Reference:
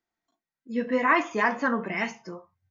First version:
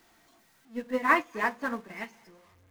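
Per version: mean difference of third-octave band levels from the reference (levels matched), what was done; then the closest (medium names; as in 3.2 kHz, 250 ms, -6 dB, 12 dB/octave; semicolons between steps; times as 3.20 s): 7.5 dB: jump at every zero crossing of -33.5 dBFS; two-band feedback delay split 460 Hz, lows 113 ms, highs 245 ms, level -16 dB; upward expansion 2.5:1, over -32 dBFS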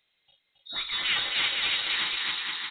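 12.0 dB: on a send: bouncing-ball echo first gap 270 ms, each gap 0.75×, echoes 5; on the sum: frequency inversion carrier 4 kHz; spectrum-flattening compressor 2:1; trim -6 dB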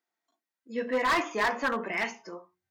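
5.0 dB: high-pass 300 Hz 12 dB/octave; hum notches 60/120/180/240/300/360/420 Hz; hard clipper -21.5 dBFS, distortion -9 dB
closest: third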